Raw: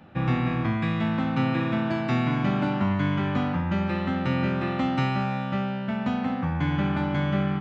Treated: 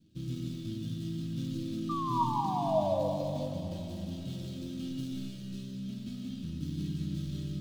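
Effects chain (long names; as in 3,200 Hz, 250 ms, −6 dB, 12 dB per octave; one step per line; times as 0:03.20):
running median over 41 samples
drawn EQ curve 160 Hz 0 dB, 370 Hz −4 dB, 810 Hz −28 dB, 1,300 Hz −15 dB, 2,100 Hz −14 dB, 3,300 Hz +7 dB
sound drawn into the spectrogram fall, 0:01.89–0:03.09, 500–1,200 Hz −23 dBFS
tuned comb filter 320 Hz, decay 0.2 s, harmonics all, mix 80%
on a send: convolution reverb RT60 2.9 s, pre-delay 110 ms, DRR 2 dB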